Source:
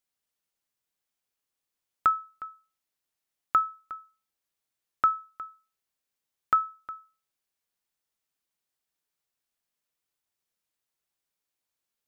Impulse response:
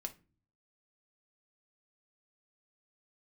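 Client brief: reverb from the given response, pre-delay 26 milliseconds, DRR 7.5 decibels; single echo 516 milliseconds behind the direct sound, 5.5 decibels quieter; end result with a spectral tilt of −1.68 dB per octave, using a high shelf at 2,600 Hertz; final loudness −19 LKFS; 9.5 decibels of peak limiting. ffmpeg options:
-filter_complex "[0:a]highshelf=frequency=2600:gain=-4,alimiter=limit=-23dB:level=0:latency=1,aecho=1:1:516:0.531,asplit=2[link_01][link_02];[1:a]atrim=start_sample=2205,adelay=26[link_03];[link_02][link_03]afir=irnorm=-1:irlink=0,volume=-5dB[link_04];[link_01][link_04]amix=inputs=2:normalize=0,volume=15dB"

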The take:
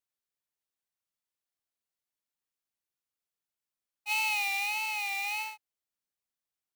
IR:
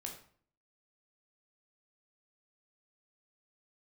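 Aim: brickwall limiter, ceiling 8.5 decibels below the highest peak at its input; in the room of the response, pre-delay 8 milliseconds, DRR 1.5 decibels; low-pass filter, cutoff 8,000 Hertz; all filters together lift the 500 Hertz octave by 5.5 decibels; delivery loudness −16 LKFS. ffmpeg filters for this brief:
-filter_complex "[0:a]lowpass=8000,equalizer=frequency=500:width_type=o:gain=7,alimiter=level_in=3.5dB:limit=-24dB:level=0:latency=1,volume=-3.5dB,asplit=2[link_01][link_02];[1:a]atrim=start_sample=2205,adelay=8[link_03];[link_02][link_03]afir=irnorm=-1:irlink=0,volume=1dB[link_04];[link_01][link_04]amix=inputs=2:normalize=0,volume=15.5dB"

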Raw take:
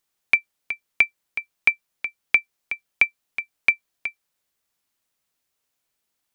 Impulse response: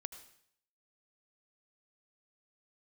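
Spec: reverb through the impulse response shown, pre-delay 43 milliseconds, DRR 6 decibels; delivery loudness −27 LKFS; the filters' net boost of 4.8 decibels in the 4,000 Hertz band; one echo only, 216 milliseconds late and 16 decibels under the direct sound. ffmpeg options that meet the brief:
-filter_complex "[0:a]equalizer=frequency=4000:width_type=o:gain=7,aecho=1:1:216:0.158,asplit=2[link_01][link_02];[1:a]atrim=start_sample=2205,adelay=43[link_03];[link_02][link_03]afir=irnorm=-1:irlink=0,volume=-3dB[link_04];[link_01][link_04]amix=inputs=2:normalize=0,volume=-6dB"

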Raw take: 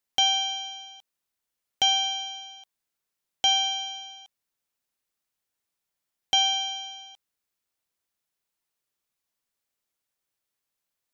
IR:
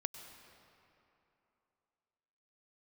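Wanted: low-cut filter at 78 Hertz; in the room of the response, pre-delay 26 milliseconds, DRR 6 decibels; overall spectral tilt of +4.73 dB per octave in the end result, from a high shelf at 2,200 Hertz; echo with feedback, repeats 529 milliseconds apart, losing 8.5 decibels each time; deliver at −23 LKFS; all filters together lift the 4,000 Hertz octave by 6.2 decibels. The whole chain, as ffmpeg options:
-filter_complex "[0:a]highpass=78,highshelf=frequency=2200:gain=4.5,equalizer=frequency=4000:width_type=o:gain=4.5,aecho=1:1:529|1058|1587|2116:0.376|0.143|0.0543|0.0206,asplit=2[link_01][link_02];[1:a]atrim=start_sample=2205,adelay=26[link_03];[link_02][link_03]afir=irnorm=-1:irlink=0,volume=-5dB[link_04];[link_01][link_04]amix=inputs=2:normalize=0,volume=-5.5dB"

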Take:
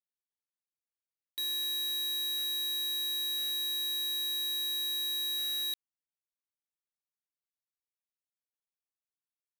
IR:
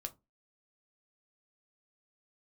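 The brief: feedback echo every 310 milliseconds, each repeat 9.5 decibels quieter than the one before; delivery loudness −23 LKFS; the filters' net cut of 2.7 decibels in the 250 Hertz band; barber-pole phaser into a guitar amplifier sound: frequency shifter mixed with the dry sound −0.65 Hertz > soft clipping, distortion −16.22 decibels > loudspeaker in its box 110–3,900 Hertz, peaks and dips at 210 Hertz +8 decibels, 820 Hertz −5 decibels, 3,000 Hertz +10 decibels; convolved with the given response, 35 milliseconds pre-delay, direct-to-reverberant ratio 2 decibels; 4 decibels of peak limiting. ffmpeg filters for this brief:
-filter_complex "[0:a]equalizer=frequency=250:width_type=o:gain=-6,alimiter=level_in=12.5dB:limit=-24dB:level=0:latency=1,volume=-12.5dB,aecho=1:1:310|620|930|1240:0.335|0.111|0.0365|0.012,asplit=2[link_01][link_02];[1:a]atrim=start_sample=2205,adelay=35[link_03];[link_02][link_03]afir=irnorm=-1:irlink=0,volume=0.5dB[link_04];[link_01][link_04]amix=inputs=2:normalize=0,asplit=2[link_05][link_06];[link_06]afreqshift=-0.65[link_07];[link_05][link_07]amix=inputs=2:normalize=1,asoftclip=threshold=-39dB,highpass=110,equalizer=frequency=210:width_type=q:width=4:gain=8,equalizer=frequency=820:width_type=q:width=4:gain=-5,equalizer=frequency=3000:width_type=q:width=4:gain=10,lowpass=frequency=3900:width=0.5412,lowpass=frequency=3900:width=1.3066,volume=20.5dB"

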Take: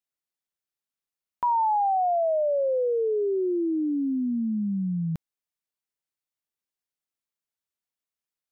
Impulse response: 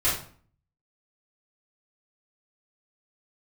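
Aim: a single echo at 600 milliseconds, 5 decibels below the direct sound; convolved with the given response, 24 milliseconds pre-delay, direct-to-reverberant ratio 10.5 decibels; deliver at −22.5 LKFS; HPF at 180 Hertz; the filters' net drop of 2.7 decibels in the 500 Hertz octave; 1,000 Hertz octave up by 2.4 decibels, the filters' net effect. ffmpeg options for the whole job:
-filter_complex "[0:a]highpass=180,equalizer=frequency=500:width_type=o:gain=-5,equalizer=frequency=1000:width_type=o:gain=5,aecho=1:1:600:0.562,asplit=2[link_01][link_02];[1:a]atrim=start_sample=2205,adelay=24[link_03];[link_02][link_03]afir=irnorm=-1:irlink=0,volume=-23dB[link_04];[link_01][link_04]amix=inputs=2:normalize=0,volume=2dB"

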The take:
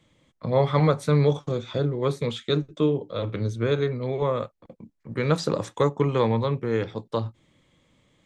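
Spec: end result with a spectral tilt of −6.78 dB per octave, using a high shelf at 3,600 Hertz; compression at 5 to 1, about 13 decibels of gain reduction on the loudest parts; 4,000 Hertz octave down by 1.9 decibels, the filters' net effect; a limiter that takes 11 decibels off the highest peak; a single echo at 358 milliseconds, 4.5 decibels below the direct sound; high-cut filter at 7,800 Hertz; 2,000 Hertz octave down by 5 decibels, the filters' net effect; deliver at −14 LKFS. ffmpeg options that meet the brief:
ffmpeg -i in.wav -af "lowpass=7800,equalizer=frequency=2000:width_type=o:gain=-7.5,highshelf=frequency=3600:gain=7,equalizer=frequency=4000:width_type=o:gain=-4,acompressor=threshold=-31dB:ratio=5,alimiter=level_in=6dB:limit=-24dB:level=0:latency=1,volume=-6dB,aecho=1:1:358:0.596,volume=25dB" out.wav

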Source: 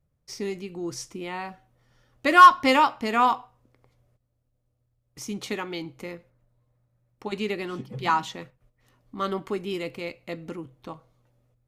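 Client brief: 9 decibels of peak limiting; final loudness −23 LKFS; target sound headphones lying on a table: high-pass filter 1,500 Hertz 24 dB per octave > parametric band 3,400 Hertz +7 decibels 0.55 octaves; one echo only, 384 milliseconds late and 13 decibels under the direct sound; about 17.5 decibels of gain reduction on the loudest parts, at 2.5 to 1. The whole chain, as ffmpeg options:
ffmpeg -i in.wav -af "acompressor=threshold=-35dB:ratio=2.5,alimiter=level_in=3.5dB:limit=-24dB:level=0:latency=1,volume=-3.5dB,highpass=frequency=1500:width=0.5412,highpass=frequency=1500:width=1.3066,equalizer=frequency=3400:width_type=o:width=0.55:gain=7,aecho=1:1:384:0.224,volume=19.5dB" out.wav

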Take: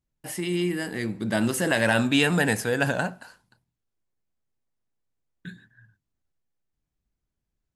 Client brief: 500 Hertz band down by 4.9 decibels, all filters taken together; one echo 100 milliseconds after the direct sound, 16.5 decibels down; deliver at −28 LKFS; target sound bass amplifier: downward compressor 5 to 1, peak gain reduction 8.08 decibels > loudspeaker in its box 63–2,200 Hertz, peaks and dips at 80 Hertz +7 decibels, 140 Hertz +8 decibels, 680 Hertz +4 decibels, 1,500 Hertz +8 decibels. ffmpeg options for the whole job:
ffmpeg -i in.wav -af "equalizer=frequency=500:width_type=o:gain=-8.5,aecho=1:1:100:0.15,acompressor=threshold=-26dB:ratio=5,highpass=frequency=63:width=0.5412,highpass=frequency=63:width=1.3066,equalizer=frequency=80:width_type=q:width=4:gain=7,equalizer=frequency=140:width_type=q:width=4:gain=8,equalizer=frequency=680:width_type=q:width=4:gain=4,equalizer=frequency=1500:width_type=q:width=4:gain=8,lowpass=frequency=2200:width=0.5412,lowpass=frequency=2200:width=1.3066,volume=0.5dB" out.wav

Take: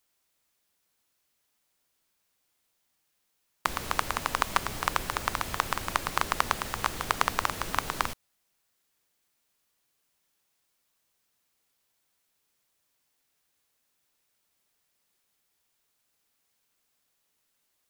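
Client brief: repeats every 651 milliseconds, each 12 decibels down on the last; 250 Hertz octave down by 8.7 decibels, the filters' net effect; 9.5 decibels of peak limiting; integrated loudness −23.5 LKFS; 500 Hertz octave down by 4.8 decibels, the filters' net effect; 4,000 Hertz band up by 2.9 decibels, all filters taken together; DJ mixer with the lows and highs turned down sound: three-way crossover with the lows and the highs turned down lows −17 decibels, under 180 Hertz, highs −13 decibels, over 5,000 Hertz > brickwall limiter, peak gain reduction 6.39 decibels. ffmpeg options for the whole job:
ffmpeg -i in.wav -filter_complex "[0:a]equalizer=frequency=250:width_type=o:gain=-7.5,equalizer=frequency=500:width_type=o:gain=-4.5,equalizer=frequency=4000:width_type=o:gain=6,alimiter=limit=-10dB:level=0:latency=1,acrossover=split=180 5000:gain=0.141 1 0.224[link_01][link_02][link_03];[link_01][link_02][link_03]amix=inputs=3:normalize=0,aecho=1:1:651|1302|1953:0.251|0.0628|0.0157,volume=15dB,alimiter=limit=-4.5dB:level=0:latency=1" out.wav

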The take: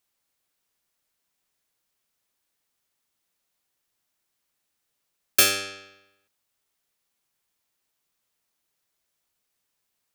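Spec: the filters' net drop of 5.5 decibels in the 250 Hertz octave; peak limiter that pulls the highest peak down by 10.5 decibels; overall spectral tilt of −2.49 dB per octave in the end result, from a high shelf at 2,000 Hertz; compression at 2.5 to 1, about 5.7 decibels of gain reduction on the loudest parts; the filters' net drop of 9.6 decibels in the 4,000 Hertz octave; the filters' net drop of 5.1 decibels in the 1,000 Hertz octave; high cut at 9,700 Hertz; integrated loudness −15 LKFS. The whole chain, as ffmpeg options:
ffmpeg -i in.wav -af "lowpass=9700,equalizer=frequency=250:width_type=o:gain=-7.5,equalizer=frequency=1000:width_type=o:gain=-4.5,highshelf=frequency=2000:gain=-5.5,equalizer=frequency=4000:width_type=o:gain=-6.5,acompressor=threshold=-30dB:ratio=2.5,volume=24.5dB,alimiter=limit=-1.5dB:level=0:latency=1" out.wav

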